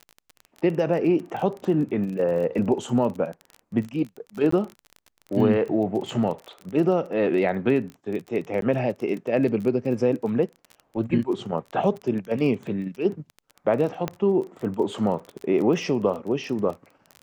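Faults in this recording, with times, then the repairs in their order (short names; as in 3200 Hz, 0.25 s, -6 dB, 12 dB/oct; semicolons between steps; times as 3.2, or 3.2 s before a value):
crackle 24/s -31 dBFS
4.51–4.52 gap 14 ms
8.61–8.62 gap 12 ms
14.08 pop -13 dBFS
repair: de-click; interpolate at 4.51, 14 ms; interpolate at 8.61, 12 ms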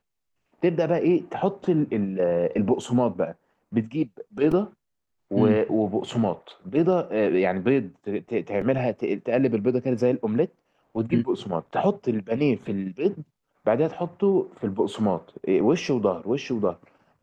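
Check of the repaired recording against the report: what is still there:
none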